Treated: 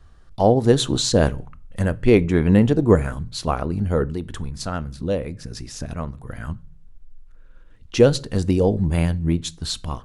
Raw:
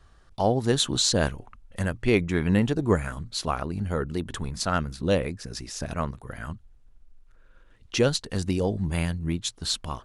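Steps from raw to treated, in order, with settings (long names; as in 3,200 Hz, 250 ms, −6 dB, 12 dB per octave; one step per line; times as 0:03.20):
low-shelf EQ 280 Hz +7.5 dB
convolution reverb RT60 0.45 s, pre-delay 4 ms, DRR 17.5 dB
0:04.09–0:06.22: downward compressor 2 to 1, threshold −28 dBFS, peak gain reduction 8 dB
dynamic equaliser 510 Hz, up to +6 dB, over −32 dBFS, Q 0.72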